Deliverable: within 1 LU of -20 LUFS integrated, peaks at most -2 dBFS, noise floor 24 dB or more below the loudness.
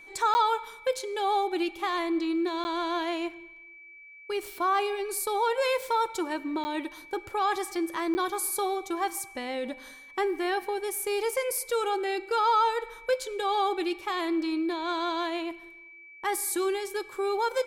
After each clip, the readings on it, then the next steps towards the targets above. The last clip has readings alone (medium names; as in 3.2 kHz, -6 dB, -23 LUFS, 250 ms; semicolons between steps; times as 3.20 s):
dropouts 4; longest dropout 10 ms; steady tone 2.3 kHz; tone level -47 dBFS; loudness -29.0 LUFS; peak level -15.5 dBFS; loudness target -20.0 LUFS
-> interpolate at 0.34/2.64/6.64/8.14 s, 10 ms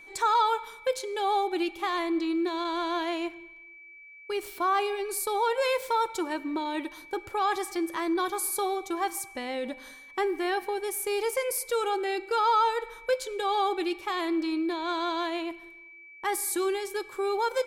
dropouts 0; steady tone 2.3 kHz; tone level -47 dBFS
-> band-stop 2.3 kHz, Q 30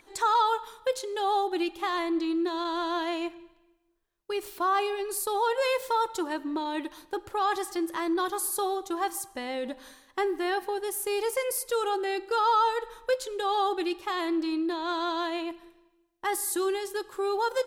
steady tone not found; loudness -29.0 LUFS; peak level -15.5 dBFS; loudness target -20.0 LUFS
-> trim +9 dB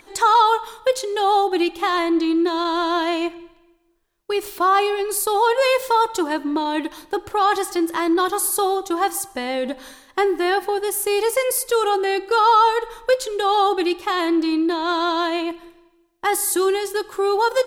loudness -20.0 LUFS; peak level -6.5 dBFS; noise floor -58 dBFS